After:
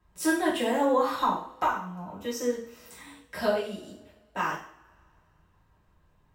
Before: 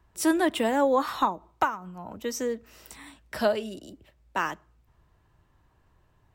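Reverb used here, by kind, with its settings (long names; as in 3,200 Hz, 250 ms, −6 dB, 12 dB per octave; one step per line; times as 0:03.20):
coupled-rooms reverb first 0.49 s, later 2.5 s, from −27 dB, DRR −7.5 dB
level −9 dB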